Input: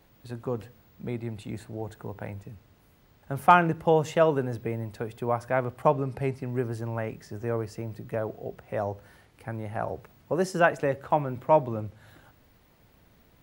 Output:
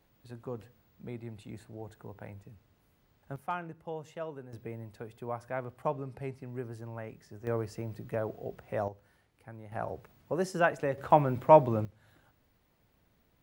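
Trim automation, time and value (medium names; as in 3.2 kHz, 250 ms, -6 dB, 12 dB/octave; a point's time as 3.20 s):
-8.5 dB
from 3.36 s -18 dB
from 4.53 s -10 dB
from 7.47 s -3 dB
from 8.88 s -12.5 dB
from 9.72 s -5 dB
from 10.98 s +2 dB
from 11.85 s -10 dB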